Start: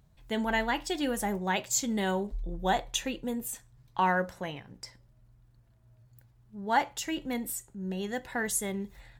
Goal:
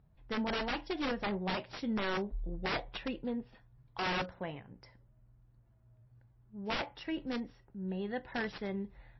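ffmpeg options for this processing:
-af "aeval=exprs='(mod(14.1*val(0)+1,2)-1)/14.1':c=same,adynamicsmooth=sensitivity=2:basefreq=2.3k,volume=-2.5dB" -ar 16000 -c:a libmp3lame -b:a 24k

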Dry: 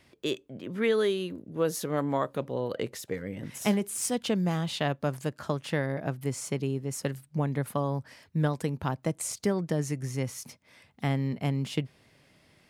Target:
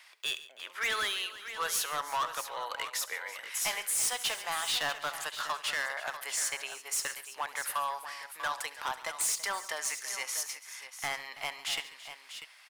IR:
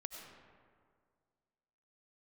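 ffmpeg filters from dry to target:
-filter_complex "[0:a]highpass=f=940:w=0.5412,highpass=f=940:w=1.3066,volume=35dB,asoftclip=hard,volume=-35dB,asplit=2[a][b];[b]aecho=0:1:69|140|331|642:0.141|0.133|0.15|0.282[c];[a][c]amix=inputs=2:normalize=0,volume=8dB"

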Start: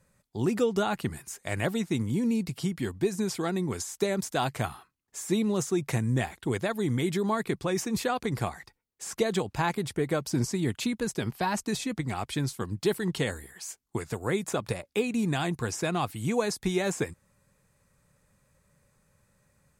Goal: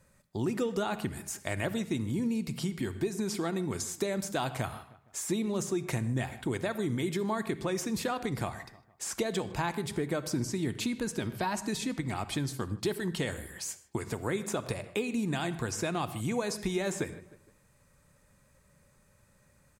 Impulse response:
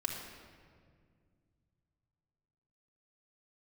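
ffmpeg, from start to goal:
-filter_complex "[0:a]asplit=2[a][b];[b]adelay=154,lowpass=f=3.1k:p=1,volume=-22dB,asplit=2[c][d];[d]adelay=154,lowpass=f=3.1k:p=1,volume=0.43,asplit=2[e][f];[f]adelay=154,lowpass=f=3.1k:p=1,volume=0.43[g];[a][c][e][g]amix=inputs=4:normalize=0,asplit=2[h][i];[1:a]atrim=start_sample=2205,atrim=end_sample=6174[j];[i][j]afir=irnorm=-1:irlink=0,volume=-8.5dB[k];[h][k]amix=inputs=2:normalize=0,acompressor=threshold=-33dB:ratio=2"

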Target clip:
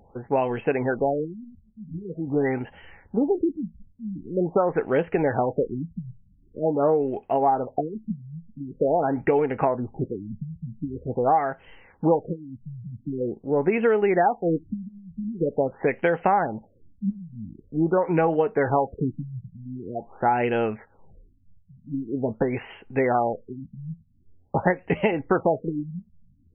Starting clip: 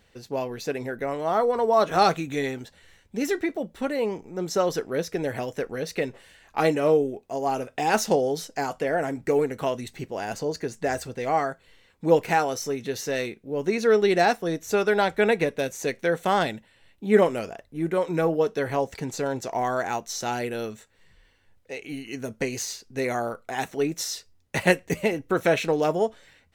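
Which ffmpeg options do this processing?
-af "equalizer=f=830:t=o:w=0.33:g=8.5,acompressor=threshold=-25dB:ratio=6,afftfilt=real='re*lt(b*sr/1024,200*pow(3300/200,0.5+0.5*sin(2*PI*0.45*pts/sr)))':imag='im*lt(b*sr/1024,200*pow(3300/200,0.5+0.5*sin(2*PI*0.45*pts/sr)))':win_size=1024:overlap=0.75,volume=7.5dB"

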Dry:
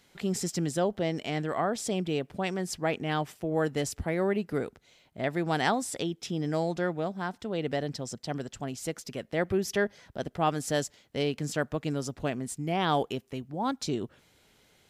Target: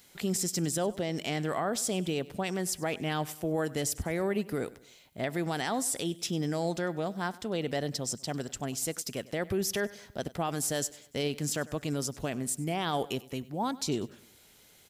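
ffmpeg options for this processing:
-filter_complex "[0:a]aemphasis=mode=production:type=50kf,alimiter=limit=-21dB:level=0:latency=1:release=56,asplit=2[a][b];[b]aecho=0:1:98|196|294:0.1|0.046|0.0212[c];[a][c]amix=inputs=2:normalize=0"

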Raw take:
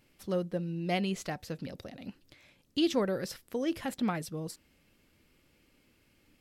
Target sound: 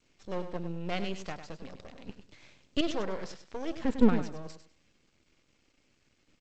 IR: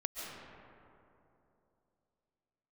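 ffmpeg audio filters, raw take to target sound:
-filter_complex "[0:a]asettb=1/sr,asplit=3[a][b][c];[a]atrim=end=0.524[d];[b]atrim=start=0.52:end=1.44,asetpts=PTS-STARTPTS,afade=t=in:d=0.004:c=qsin,afade=t=out:st=0.916:d=0.004:c=qsin,highpass=f=73:w=0.5412,highpass=f=73:w=1.3066[e];[c]atrim=start=1.436[f];[d][e]acrossfade=d=0.004:c1=hsin:c2=qsin[g];[g][f]acrossfade=d=0.004:c1=qsin:c2=hsin,asettb=1/sr,asplit=3[h][i][j];[h]atrim=end=2.094[k];[i]atrim=start=2.09:end=2.81,asetpts=PTS-STARTPTS,afade=t=in:d=0.004:c=qsin,afade=t=out:st=0.716:d=0.004:c=qsin,acontrast=74[l];[j]atrim=start=2.806[m];[k][l]acrossfade=d=0.004:c1=hsin:c2=qsin[n];[n][m]acrossfade=d=0.004:c1=qsin:c2=hsin,asettb=1/sr,asplit=3[o][p][q];[o]atrim=end=3.804[r];[p]atrim=start=3.8:end=4.22,asetpts=PTS-STARTPTS,afade=t=in:d=0.004:c=qsin,afade=t=out:st=0.416:d=0.004:c=qsin,equalizer=f=240:w=1.1:g=14.5[s];[q]atrim=start=4.216[t];[r][s]acrossfade=d=0.004:c1=hsin:c2=qsin[u];[u][t]acrossfade=d=0.004:c1=qsin:c2=hsin,aeval=exprs='max(val(0),0)':c=same,aecho=1:1:100|200|300:0.316|0.0727|0.0167" -ar 16000 -c:a g722

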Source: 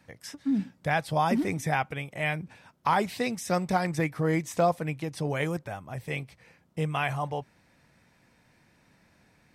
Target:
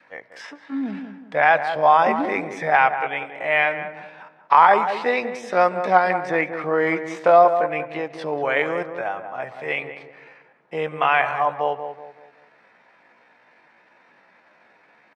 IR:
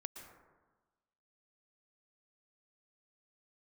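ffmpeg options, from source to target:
-filter_complex "[0:a]adynamicequalizer=threshold=0.00631:dfrequency=860:dqfactor=4.8:tfrequency=860:tqfactor=4.8:attack=5:release=100:ratio=0.375:range=2.5:mode=cutabove:tftype=bell,acontrast=69,atempo=0.63,highpass=580,lowpass=2.2k,asplit=2[a][b];[b]adelay=188,lowpass=f=1.2k:p=1,volume=-8dB,asplit=2[c][d];[d]adelay=188,lowpass=f=1.2k:p=1,volume=0.4,asplit=2[e][f];[f]adelay=188,lowpass=f=1.2k:p=1,volume=0.4,asplit=2[g][h];[h]adelay=188,lowpass=f=1.2k:p=1,volume=0.4,asplit=2[i][j];[j]adelay=188,lowpass=f=1.2k:p=1,volume=0.4[k];[a][c][e][g][i][k]amix=inputs=6:normalize=0,asplit=2[l][m];[1:a]atrim=start_sample=2205,asetrate=74970,aresample=44100[n];[m][n]afir=irnorm=-1:irlink=0,volume=-6.5dB[o];[l][o]amix=inputs=2:normalize=0,volume=5dB"

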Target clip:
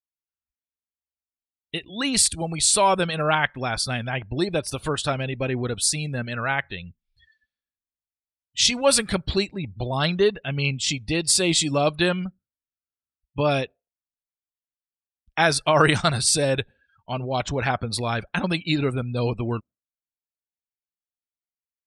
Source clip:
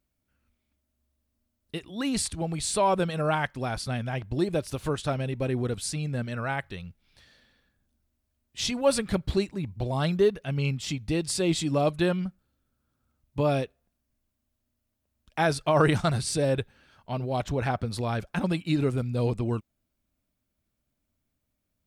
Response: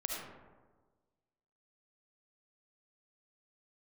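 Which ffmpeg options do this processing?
-af "afftdn=nr=35:nf=-48,tiltshelf=f=1.2k:g=-5.5,volume=6.5dB"

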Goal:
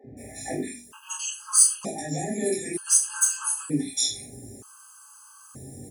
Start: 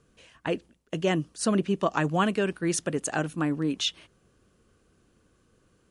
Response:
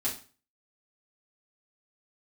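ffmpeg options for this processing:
-filter_complex "[0:a]highpass=74,aemphasis=mode=production:type=cd,asplit=2[a][b];[b]acompressor=threshold=-36dB:ratio=6,volume=2.5dB[c];[a][c]amix=inputs=2:normalize=0,alimiter=limit=-18.5dB:level=0:latency=1:release=42,acrossover=split=1300[d][e];[d]acompressor=mode=upward:threshold=-32dB:ratio=2.5[f];[e]aexciter=amount=6.2:drive=4.9:freq=5.4k[g];[f][g]amix=inputs=2:normalize=0,asoftclip=type=hard:threshold=-7.5dB,flanger=delay=17.5:depth=4.4:speed=0.46,acrossover=split=420|2100[h][i][j];[h]adelay=40[k];[j]adelay=170[l];[k][i][l]amix=inputs=3:normalize=0[m];[1:a]atrim=start_sample=2205,atrim=end_sample=6174[n];[m][n]afir=irnorm=-1:irlink=0,afftfilt=real='re*gt(sin(2*PI*0.54*pts/sr)*(1-2*mod(floor(b*sr/1024/840),2)),0)':imag='im*gt(sin(2*PI*0.54*pts/sr)*(1-2*mod(floor(b*sr/1024/840),2)),0)':win_size=1024:overlap=0.75"

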